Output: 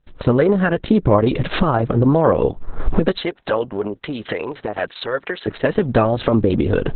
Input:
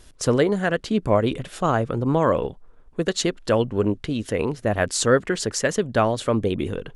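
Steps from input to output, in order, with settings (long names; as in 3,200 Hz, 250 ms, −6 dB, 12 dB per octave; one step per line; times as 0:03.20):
camcorder AGC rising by 61 dB per second
0:03.20–0:05.46: high-pass filter 540 Hz → 1,400 Hz 6 dB per octave
high-shelf EQ 6,600 Hz +11.5 dB
noise gate with hold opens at −34 dBFS
head-to-tape spacing loss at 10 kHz 30 dB
boost into a limiter +7.5 dB
level −1.5 dB
Opus 6 kbit/s 48,000 Hz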